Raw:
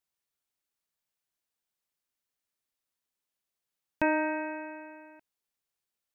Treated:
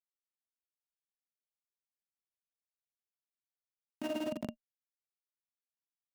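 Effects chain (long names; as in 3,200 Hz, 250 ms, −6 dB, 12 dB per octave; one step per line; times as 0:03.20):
soft clipping −20 dBFS, distortion −17 dB
notch filter 1,000 Hz, Q 28
comparator with hysteresis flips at −28 dBFS
high-pass filter 160 Hz 12 dB per octave
amplitude tremolo 18 Hz, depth 86%
hollow resonant body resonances 230/610/2,800 Hz, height 16 dB, ringing for 50 ms
envelope flattener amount 70%
level −1 dB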